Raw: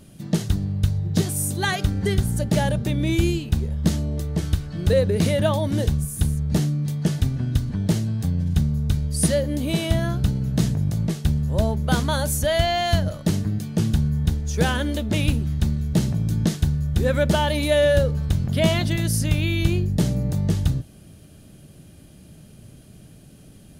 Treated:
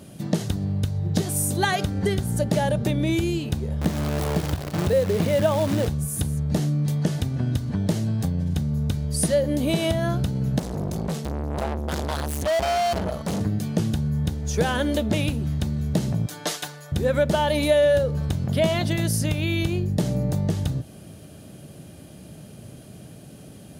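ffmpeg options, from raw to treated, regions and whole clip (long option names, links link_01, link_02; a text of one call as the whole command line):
ffmpeg -i in.wav -filter_complex "[0:a]asettb=1/sr,asplit=3[link_01][link_02][link_03];[link_01]atrim=end=3.814[link_04];[link_02]atrim=start=3.81:end=5.88,asetpts=PTS-STARTPTS,afade=type=in:duration=0.004:curve=qsin,afade=type=out:start_time=2.066:duration=0.004:curve=qsin,acrossover=split=3600[link_05][link_06];[link_06]acompressor=threshold=-45dB:ratio=4:attack=1:release=60[link_07];[link_05][link_07]amix=inputs=2:normalize=0,acrusher=bits=6:dc=4:mix=0:aa=0.000001[link_08];[link_03]atrim=start=5.876[link_09];[link_04][link_08]acrossfade=duration=0.004:curve1=hsin:curve2=qsin[link_10];[link_10][link_09]acrossfade=duration=0.004:curve1=qsin:curve2=hsin,asettb=1/sr,asplit=3[link_11][link_12][link_13];[link_11]atrim=end=10.594[link_14];[link_12]atrim=start=10.59:end=13.41,asetpts=PTS-STARTPTS,afade=type=in:duration=0.004:curve=qsin,afade=type=out:start_time=2.816:duration=0.004:curve=qsin,equalizer=frequency=70:width_type=o:width=0.64:gain=14,aecho=1:1:4.5:0.75,atrim=end_sample=124362,aeval=exprs='(tanh(25.1*val(0)+0.35)-tanh(0.35))/25.1':channel_layout=same[link_15];[link_13]atrim=start=13.406[link_16];[link_14][link_15]acrossfade=duration=0.004:curve1=hsin:curve2=qsin[link_17];[link_17][link_16]acrossfade=duration=0.004:curve1=qsin:curve2=hsin,asettb=1/sr,asplit=3[link_18][link_19][link_20];[link_18]atrim=end=16.264[link_21];[link_19]atrim=start=16.26:end=16.92,asetpts=PTS-STARTPTS,afade=type=in:duration=0.004:curve=qsin,afade=type=out:start_time=0.656:duration=0.004:curve=qsin,highpass=710,aecho=1:1:6.8:0.68,atrim=end_sample=29106[link_22];[link_20]atrim=start=16.916[link_23];[link_21][link_22]acrossfade=duration=0.004:curve1=hsin:curve2=qsin[link_24];[link_24][link_23]acrossfade=duration=0.004:curve1=qsin:curve2=hsin,acompressor=threshold=-23dB:ratio=6,highpass=80,equalizer=frequency=650:width=0.91:gain=5,volume=3.5dB" out.wav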